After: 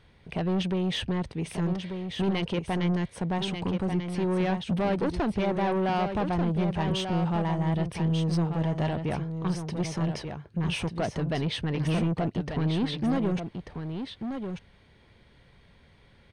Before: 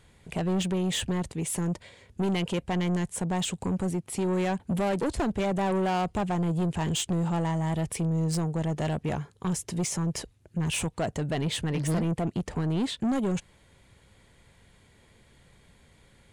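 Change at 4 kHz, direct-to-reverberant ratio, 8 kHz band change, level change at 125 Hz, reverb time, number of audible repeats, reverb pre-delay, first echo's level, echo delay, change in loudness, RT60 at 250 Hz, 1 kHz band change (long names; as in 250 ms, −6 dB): 0.0 dB, no reverb audible, −12.0 dB, +1.0 dB, no reverb audible, 1, no reverb audible, −7.0 dB, 1,190 ms, 0.0 dB, no reverb audible, +1.0 dB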